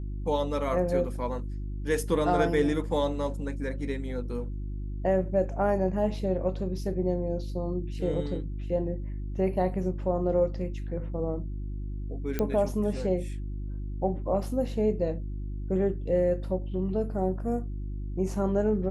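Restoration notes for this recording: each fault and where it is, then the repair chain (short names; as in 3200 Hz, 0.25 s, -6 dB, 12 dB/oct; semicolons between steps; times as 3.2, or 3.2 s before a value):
hum 50 Hz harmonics 7 -34 dBFS
12.39 pop -15 dBFS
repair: de-click; de-hum 50 Hz, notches 7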